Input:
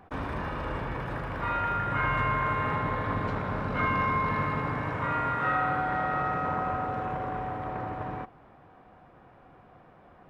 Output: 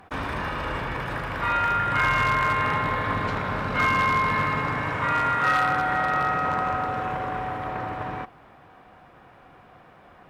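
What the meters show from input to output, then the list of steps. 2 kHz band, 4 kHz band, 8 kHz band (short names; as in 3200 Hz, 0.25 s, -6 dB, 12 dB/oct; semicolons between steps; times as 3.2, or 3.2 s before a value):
+7.5 dB, +11.0 dB, n/a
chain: one-sided clip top -21.5 dBFS, bottom -18.5 dBFS; tilt shelf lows -5 dB, about 1400 Hz; gain +6.5 dB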